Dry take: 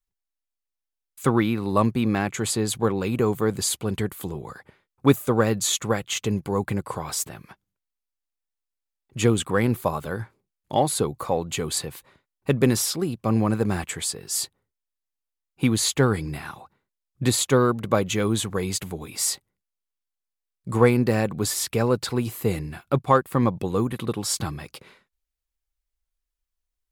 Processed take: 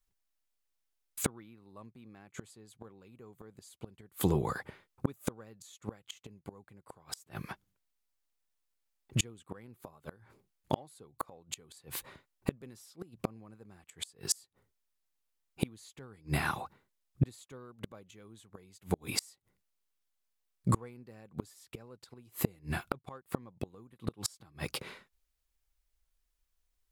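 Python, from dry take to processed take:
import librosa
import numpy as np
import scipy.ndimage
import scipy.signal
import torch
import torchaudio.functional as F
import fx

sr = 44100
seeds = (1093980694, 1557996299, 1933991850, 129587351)

y = fx.gate_flip(x, sr, shuts_db=-19.0, range_db=-35)
y = y * librosa.db_to_amplitude(4.0)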